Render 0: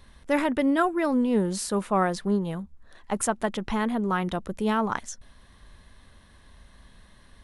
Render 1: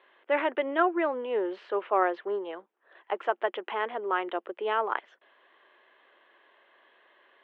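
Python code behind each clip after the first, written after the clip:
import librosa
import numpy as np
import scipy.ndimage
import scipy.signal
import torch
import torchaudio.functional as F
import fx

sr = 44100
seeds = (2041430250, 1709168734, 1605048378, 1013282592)

y = scipy.signal.sosfilt(scipy.signal.cheby1(4, 1.0, [350.0, 3100.0], 'bandpass', fs=sr, output='sos'), x)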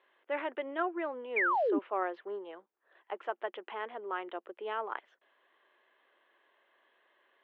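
y = fx.spec_paint(x, sr, seeds[0], shape='fall', start_s=1.36, length_s=0.43, low_hz=260.0, high_hz=2500.0, level_db=-20.0)
y = y * 10.0 ** (-8.5 / 20.0)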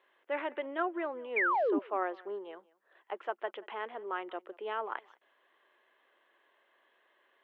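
y = x + 10.0 ** (-23.5 / 20.0) * np.pad(x, (int(182 * sr / 1000.0), 0))[:len(x)]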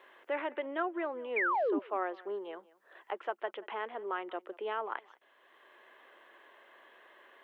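y = fx.band_squash(x, sr, depth_pct=40)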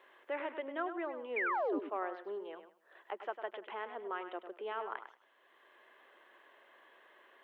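y = x + 10.0 ** (-10.0 / 20.0) * np.pad(x, (int(101 * sr / 1000.0), 0))[:len(x)]
y = y * 10.0 ** (-4.0 / 20.0)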